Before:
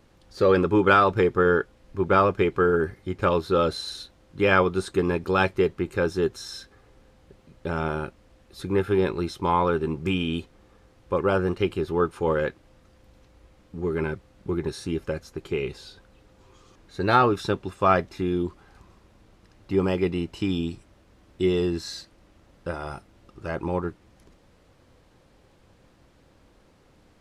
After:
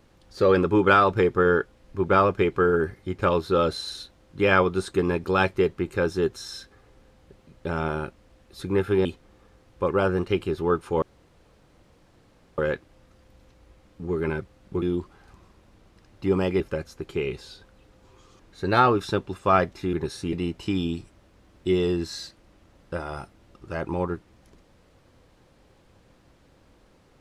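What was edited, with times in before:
9.05–10.35 cut
12.32 insert room tone 1.56 s
14.56–14.96 swap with 18.29–20.07

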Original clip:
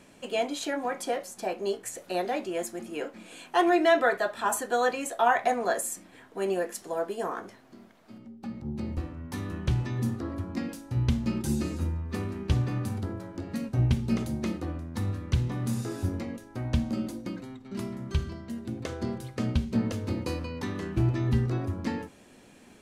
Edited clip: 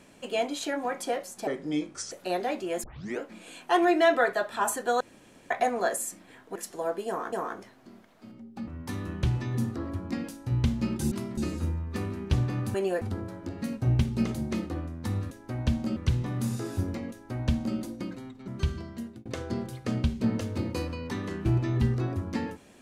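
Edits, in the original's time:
1.47–1.96 speed 76%
2.68 tape start 0.36 s
4.85–5.35 room tone
6.4–6.67 move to 12.93
7.19–7.44 loop, 2 plays
8.54–9.12 cut
16.37–17.03 copy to 15.22
17.73–17.99 move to 11.56
18.51–18.77 fade out

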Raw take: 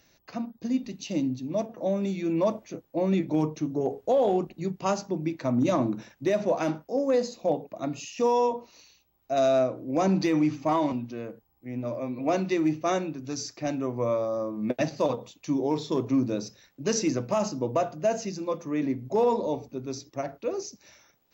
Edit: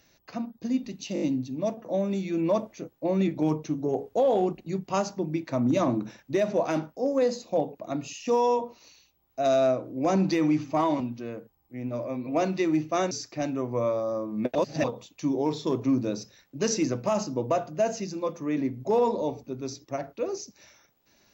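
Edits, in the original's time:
1.14 stutter 0.02 s, 5 plays
13.03–13.36 cut
14.8–15.09 reverse

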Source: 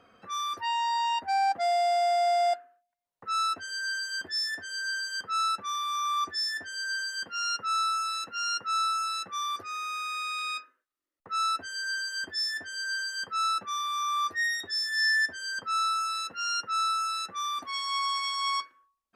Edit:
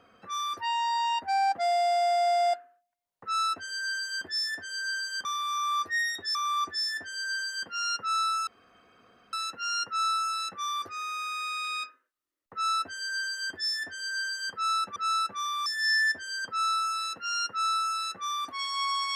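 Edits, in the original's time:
5.25–5.95 swap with 13.7–14.8
8.07 insert room tone 0.86 s

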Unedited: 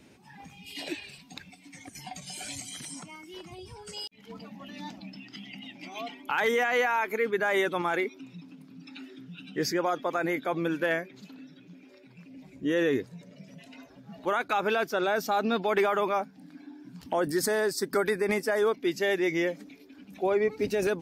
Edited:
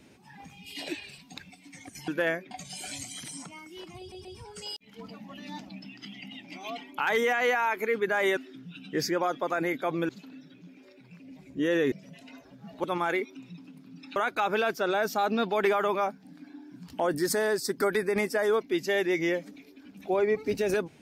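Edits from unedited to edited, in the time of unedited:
3.56 stutter 0.13 s, 3 plays
7.68–9 move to 14.29
10.72–11.15 move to 2.08
12.98–13.37 cut

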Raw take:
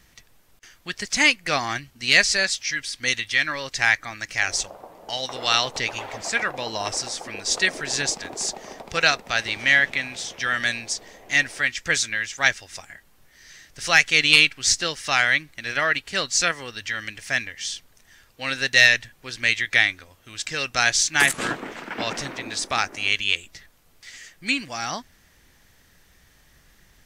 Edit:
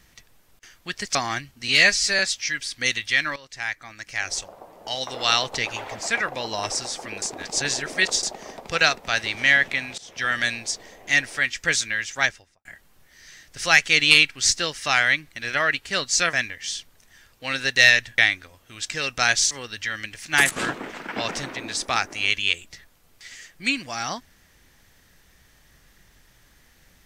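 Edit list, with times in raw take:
1.15–1.54 cut
2.07–2.41 stretch 1.5×
3.58–5.21 fade in, from -15.5 dB
7.44–8.45 reverse
10.2–10.47 fade in, from -20.5 dB
12.36–12.87 studio fade out
16.55–17.3 move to 21.08
19.15–19.75 cut

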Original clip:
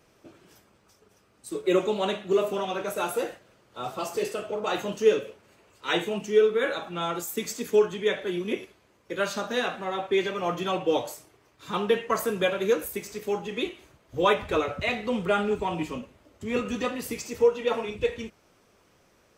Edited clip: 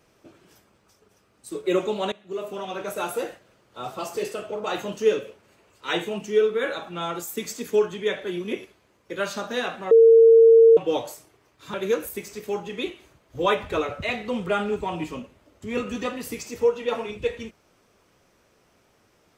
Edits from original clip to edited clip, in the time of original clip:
2.12–2.89 fade in, from -19.5 dB
9.91–10.77 bleep 455 Hz -9 dBFS
11.74–12.53 cut

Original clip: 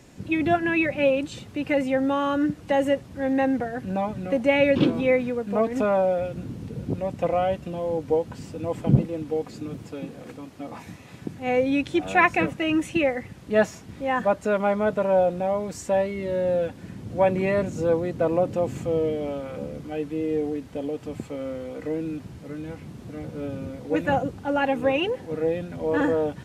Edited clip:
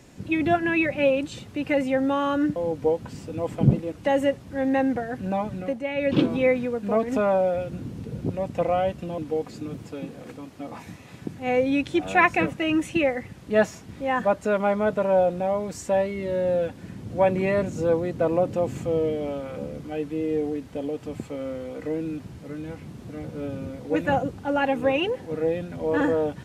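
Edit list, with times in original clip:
4.2–4.84 dip -9.5 dB, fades 0.25 s
7.82–9.18 move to 2.56

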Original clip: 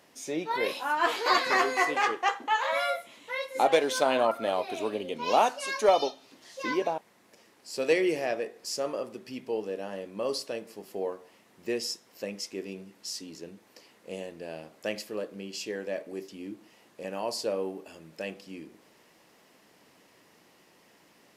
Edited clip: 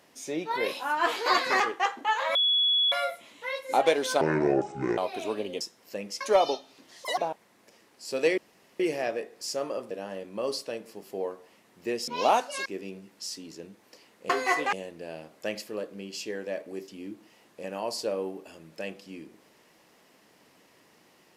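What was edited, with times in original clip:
1.6–2.03 move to 14.13
2.78 add tone 3380 Hz -20.5 dBFS 0.57 s
4.07–4.53 speed 60%
5.16–5.74 swap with 11.89–12.49
6.58–6.83 speed 193%
8.03 insert room tone 0.42 s
9.14–9.72 cut

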